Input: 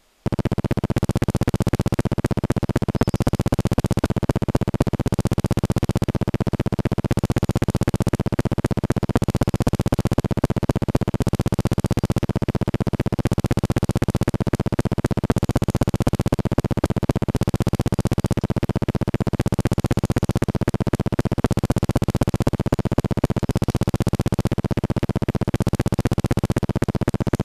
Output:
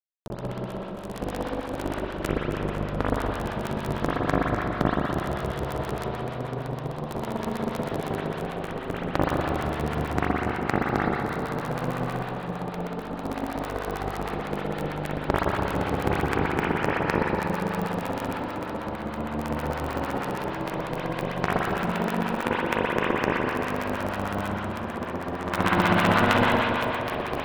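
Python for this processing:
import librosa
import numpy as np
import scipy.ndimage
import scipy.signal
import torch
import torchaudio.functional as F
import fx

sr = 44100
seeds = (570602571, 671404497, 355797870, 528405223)

p1 = fx.pitch_glide(x, sr, semitones=11.0, runs='starting unshifted')
p2 = fx.spec_box(p1, sr, start_s=25.42, length_s=1.03, low_hz=670.0, high_hz=4200.0, gain_db=7)
p3 = fx.power_curve(p2, sr, exponent=3.0)
p4 = fx.level_steps(p3, sr, step_db=16)
p5 = p3 + F.gain(torch.from_numpy(p4), 1.5).numpy()
p6 = 10.0 ** (-3.5 / 20.0) * np.tanh(p5 / 10.0 ** (-3.5 / 20.0))
p7 = fx.echo_stepped(p6, sr, ms=144, hz=1300.0, octaves=1.4, feedback_pct=70, wet_db=-6.5)
p8 = fx.rev_spring(p7, sr, rt60_s=2.9, pass_ms=(40, 58), chirp_ms=65, drr_db=-8.0)
p9 = fx.harmonic_tremolo(p8, sr, hz=6.4, depth_pct=50, crossover_hz=920.0)
y = F.gain(torch.from_numpy(p9), 2.0).numpy()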